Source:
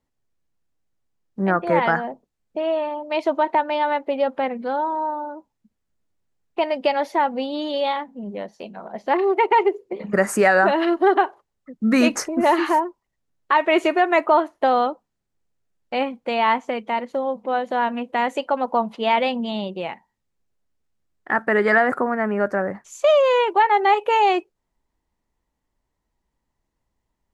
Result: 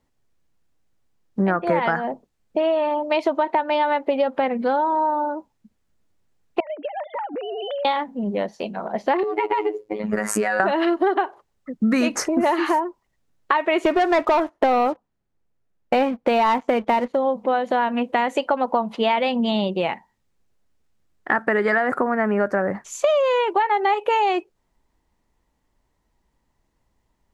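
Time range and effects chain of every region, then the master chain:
0:06.60–0:07.85: three sine waves on the formant tracks + downward compressor 16 to 1, threshold −32 dBFS
0:09.23–0:10.60: downward compressor 3 to 1, threshold −22 dBFS + phases set to zero 106 Hz
0:13.85–0:17.14: high-shelf EQ 3,300 Hz −11 dB + leveller curve on the samples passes 2
whole clip: high-shelf EQ 9,100 Hz −3.5 dB; downward compressor 6 to 1, threshold −24 dBFS; level +7 dB

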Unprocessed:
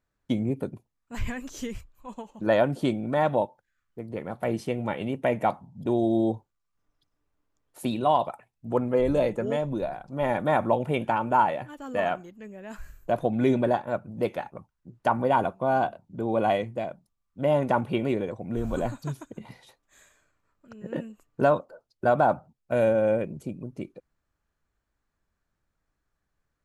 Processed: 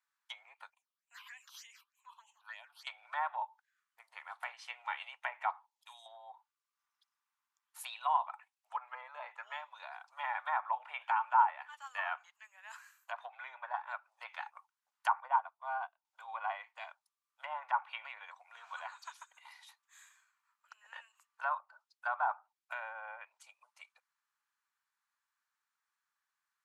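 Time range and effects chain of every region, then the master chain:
0:00.70–0:02.87: high-pass filter 260 Hz 6 dB per octave + all-pass phaser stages 6, 3.3 Hz, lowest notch 490–1,400 Hz + downward compressor 2 to 1, threshold −46 dBFS
0:05.66–0:06.06: guitar amp tone stack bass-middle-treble 10-0-10 + notch filter 1,500 Hz, Q 6.7
0:15.20–0:16.05: tilt shelving filter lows +4 dB, about 1,100 Hz + expander for the loud parts 2.5 to 1, over −31 dBFS
whole clip: treble cut that deepens with the level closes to 1,400 Hz, closed at −19.5 dBFS; Butterworth high-pass 880 Hz 48 dB per octave; level −2 dB

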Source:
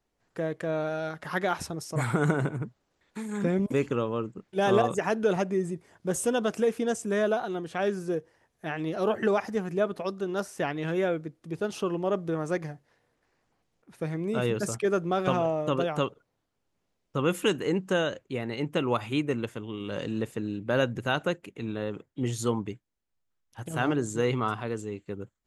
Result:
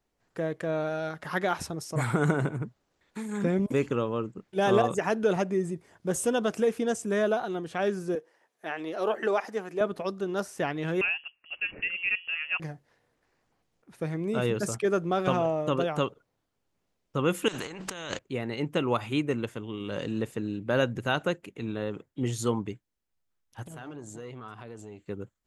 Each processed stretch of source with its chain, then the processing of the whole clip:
0:08.15–0:09.81: high-pass filter 190 Hz + bass and treble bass −12 dB, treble −2 dB
0:11.01–0:12.60: high-pass filter 370 Hz + voice inversion scrambler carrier 3,100 Hz
0:17.48–0:18.19: low-pass filter 6,400 Hz + compressor whose output falls as the input rises −37 dBFS + every bin compressed towards the loudest bin 2 to 1
0:23.64–0:25.08: downward compressor 4 to 1, threshold −39 dBFS + saturating transformer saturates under 530 Hz
whole clip: no processing

